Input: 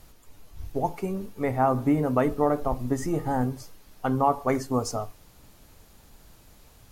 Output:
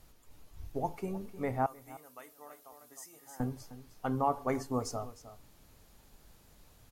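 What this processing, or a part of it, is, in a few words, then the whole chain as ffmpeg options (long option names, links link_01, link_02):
ducked delay: -filter_complex "[0:a]asettb=1/sr,asplit=3[link_01][link_02][link_03];[link_01]atrim=end=1.664[link_04];[link_02]atrim=start=1.66:end=3.4,asetpts=PTS-STARTPTS,afade=type=in:duration=0.004:curve=qsin,afade=type=out:start_time=1.736:duration=0.004:curve=qsin,aderivative[link_05];[link_03]atrim=start=3.396[link_06];[link_04][link_05]acrossfade=duration=0.004:curve1=hsin:curve2=qsin[link_07];[link_07][link_06]acrossfade=duration=0.004:curve1=qsin:curve2=hsin,asplit=3[link_08][link_09][link_10];[link_09]adelay=308,volume=-6dB[link_11];[link_10]apad=whole_len=318532[link_12];[link_11][link_12]sidechaincompress=threshold=-35dB:ratio=8:attack=16:release=889[link_13];[link_08][link_13]amix=inputs=2:normalize=0,volume=-7.5dB"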